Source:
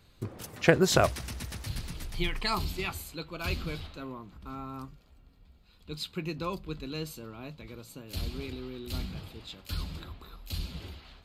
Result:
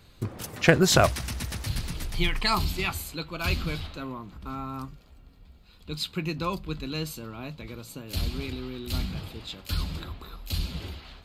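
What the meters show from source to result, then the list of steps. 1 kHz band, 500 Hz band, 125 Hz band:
+4.5 dB, +2.0 dB, +5.5 dB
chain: dynamic equaliser 430 Hz, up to −4 dB, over −48 dBFS, Q 1.5
in parallel at −8.5 dB: gain into a clipping stage and back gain 21.5 dB
on the sum: level +3 dB

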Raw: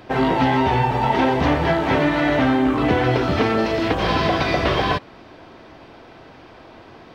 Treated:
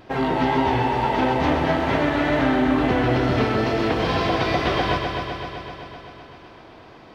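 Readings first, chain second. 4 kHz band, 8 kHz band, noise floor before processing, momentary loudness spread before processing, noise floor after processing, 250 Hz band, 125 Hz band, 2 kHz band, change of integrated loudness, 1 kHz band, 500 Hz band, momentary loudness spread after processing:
−2.0 dB, can't be measured, −45 dBFS, 2 LU, −45 dBFS, −1.5 dB, −2.0 dB, −2.0 dB, −2.0 dB, −2.0 dB, −1.5 dB, 12 LU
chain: pitch vibrato 2.2 Hz 37 cents
echo machine with several playback heads 128 ms, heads first and second, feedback 69%, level −9 dB
level −4 dB

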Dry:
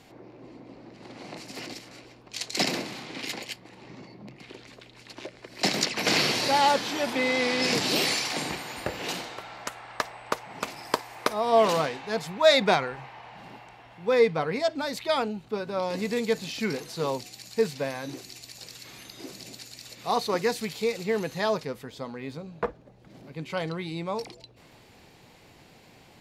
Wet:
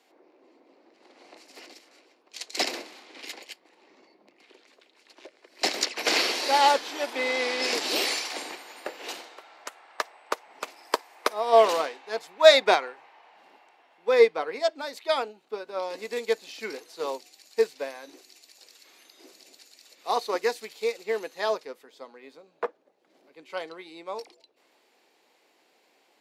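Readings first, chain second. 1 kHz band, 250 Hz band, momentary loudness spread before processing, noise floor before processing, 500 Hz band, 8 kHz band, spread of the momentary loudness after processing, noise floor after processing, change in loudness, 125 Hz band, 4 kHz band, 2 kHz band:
+0.5 dB, −9.0 dB, 21 LU, −54 dBFS, +1.5 dB, −1.5 dB, 21 LU, −66 dBFS, +1.5 dB, below −20 dB, −0.5 dB, 0.0 dB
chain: high-pass filter 320 Hz 24 dB per octave
expander for the loud parts 1.5 to 1, over −42 dBFS
level +5 dB

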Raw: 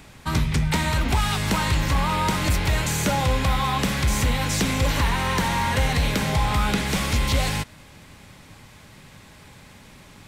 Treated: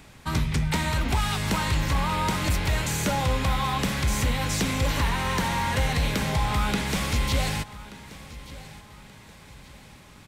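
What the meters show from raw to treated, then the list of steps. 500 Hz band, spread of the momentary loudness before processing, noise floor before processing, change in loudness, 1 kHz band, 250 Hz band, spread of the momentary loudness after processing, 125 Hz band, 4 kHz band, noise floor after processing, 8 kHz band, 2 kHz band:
−3.0 dB, 1 LU, −48 dBFS, −3.0 dB, −3.0 dB, −3.0 dB, 17 LU, −3.0 dB, −3.0 dB, −49 dBFS, −3.0 dB, −3.0 dB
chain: repeating echo 1,180 ms, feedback 38%, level −18 dB
level −3 dB

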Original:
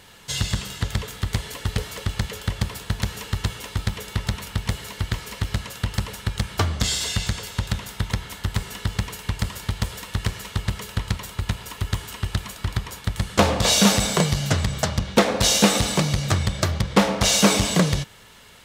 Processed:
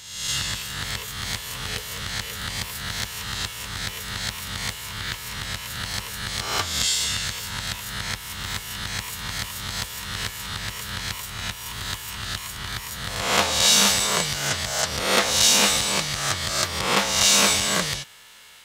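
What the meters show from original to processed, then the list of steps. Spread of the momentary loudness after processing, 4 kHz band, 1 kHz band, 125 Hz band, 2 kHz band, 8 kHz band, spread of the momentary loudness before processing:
14 LU, +3.5 dB, −0.5 dB, −10.5 dB, +3.0 dB, +3.5 dB, 12 LU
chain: peak hold with a rise ahead of every peak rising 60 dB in 0.92 s
tilt shelving filter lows −8 dB, about 690 Hz
level −7.5 dB

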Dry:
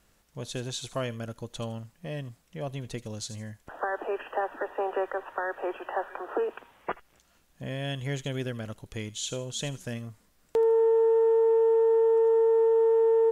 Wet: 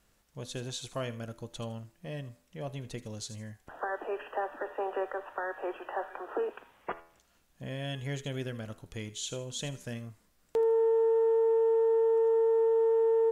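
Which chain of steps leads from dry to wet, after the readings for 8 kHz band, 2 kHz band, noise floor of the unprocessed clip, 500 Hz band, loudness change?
−3.5 dB, −4.0 dB, −66 dBFS, −3.5 dB, −3.5 dB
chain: hum removal 83.92 Hz, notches 32
level −3.5 dB

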